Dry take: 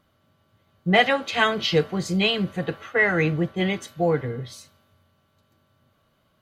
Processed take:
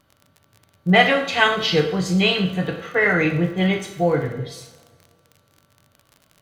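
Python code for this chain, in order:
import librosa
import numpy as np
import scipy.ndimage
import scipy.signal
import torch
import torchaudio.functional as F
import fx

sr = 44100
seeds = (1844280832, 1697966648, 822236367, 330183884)

y = fx.rev_double_slope(x, sr, seeds[0], early_s=0.57, late_s=2.0, knee_db=-19, drr_db=2.0)
y = fx.dmg_crackle(y, sr, seeds[1], per_s=42.0, level_db=-36.0)
y = F.gain(torch.from_numpy(y), 1.5).numpy()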